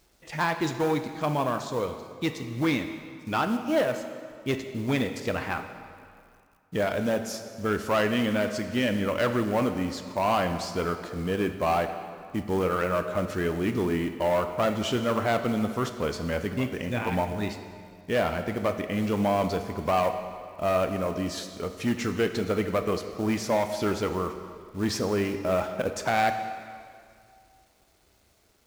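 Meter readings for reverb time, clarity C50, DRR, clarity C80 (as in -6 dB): 2.2 s, 8.5 dB, 7.5 dB, 9.5 dB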